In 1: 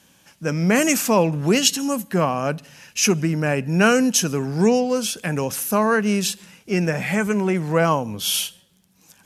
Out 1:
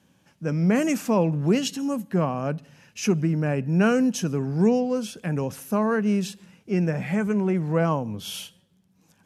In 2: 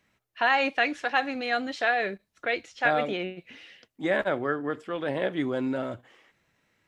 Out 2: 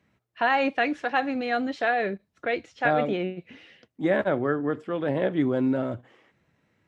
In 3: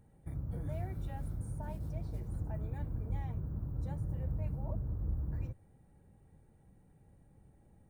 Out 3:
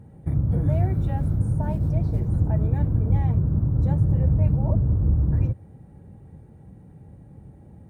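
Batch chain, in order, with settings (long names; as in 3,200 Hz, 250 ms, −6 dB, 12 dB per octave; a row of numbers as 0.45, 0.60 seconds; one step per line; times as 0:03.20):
high-pass filter 91 Hz 12 dB per octave
spectral tilt −2.5 dB per octave
normalise the peak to −9 dBFS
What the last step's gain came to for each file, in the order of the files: −7.0, +0.5, +12.0 decibels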